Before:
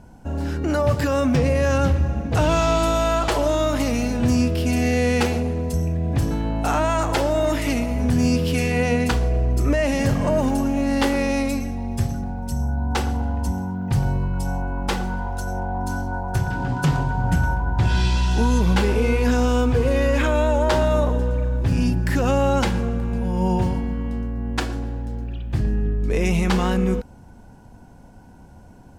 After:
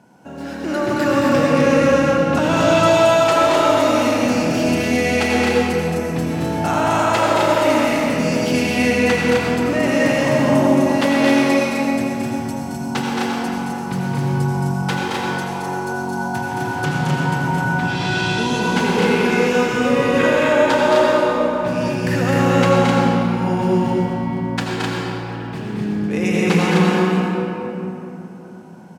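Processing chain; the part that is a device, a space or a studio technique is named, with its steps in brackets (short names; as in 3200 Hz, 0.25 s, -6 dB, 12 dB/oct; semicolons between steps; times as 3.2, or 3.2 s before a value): stadium PA (HPF 150 Hz 24 dB/oct; bell 2200 Hz +4 dB 2.4 oct; loudspeakers at several distances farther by 76 m -4 dB, 88 m -3 dB; reverb RT60 3.3 s, pre-delay 74 ms, DRR -2.5 dB); gain -2.5 dB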